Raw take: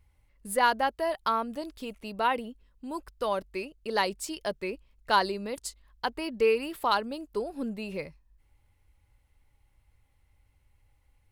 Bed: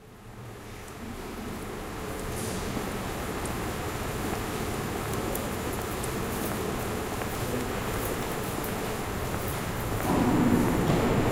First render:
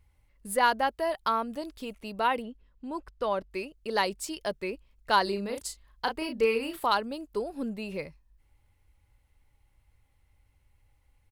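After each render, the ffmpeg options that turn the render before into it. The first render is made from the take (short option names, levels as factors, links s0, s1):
-filter_complex "[0:a]asettb=1/sr,asplit=3[s0][s1][s2];[s0]atrim=end=2.424[s3];[s1]atrim=start=2.42:end=3.51,asetpts=PTS-STARTPTS,afade=t=in:d=0.004:c=qsin,afade=t=out:st=1.086:d=0.004:c=qsin,aemphasis=mode=reproduction:type=50fm[s4];[s2]atrim=start=3.506[s5];[s3][s4]acrossfade=d=0.004:c1=hsin:c2=qsin[s6];[s6][s5]acrossfade=d=0.004:c1=qsin:c2=hsin,asplit=3[s7][s8][s9];[s7]afade=t=out:st=5.26:d=0.02[s10];[s8]asplit=2[s11][s12];[s12]adelay=35,volume=0.531[s13];[s11][s13]amix=inputs=2:normalize=0,afade=t=in:st=5.26:d=0.02,afade=t=out:st=6.85:d=0.02[s14];[s9]afade=t=in:st=6.85:d=0.02[s15];[s10][s14][s15]amix=inputs=3:normalize=0"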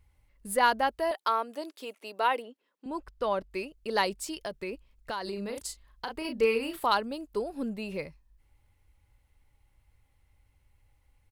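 -filter_complex "[0:a]asettb=1/sr,asplit=3[s0][s1][s2];[s0]atrim=end=1.114[s3];[s1]atrim=start=1.11:end=2.86,asetpts=PTS-STARTPTS,afade=t=in:d=0.004:c=qsin,afade=t=out:st=1.746:d=0.004:c=qsin,highpass=f=310:w=0.5412,highpass=f=310:w=1.3066[s4];[s2]atrim=start=2.856[s5];[s3][s4]acrossfade=d=0.004:c1=hsin:c2=qsin[s6];[s6][s5]acrossfade=d=0.004:c1=qsin:c2=hsin,asettb=1/sr,asplit=3[s7][s8][s9];[s7]atrim=end=4.134[s10];[s8]atrim=start=4.13:end=6.25,asetpts=PTS-STARTPTS,afade=t=in:d=0.004:c=qsin,afade=t=out:st=2.116:d=0.004:c=qsin,acompressor=threshold=0.0282:ratio=6:attack=3.2:release=140:knee=1:detection=peak[s11];[s9]atrim=start=6.246[s12];[s10][s11]acrossfade=d=0.004:c1=hsin:c2=qsin[s13];[s13][s12]acrossfade=d=0.004:c1=qsin:c2=hsin"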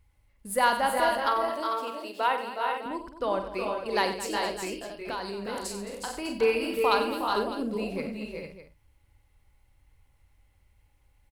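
-filter_complex "[0:a]asplit=2[s0][s1];[s1]adelay=47,volume=0.316[s2];[s0][s2]amix=inputs=2:normalize=0,aecho=1:1:93|217|364|388|448|604:0.299|0.188|0.422|0.473|0.376|0.188"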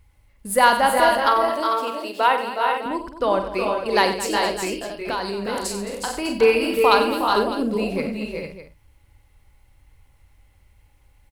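-af "volume=2.51"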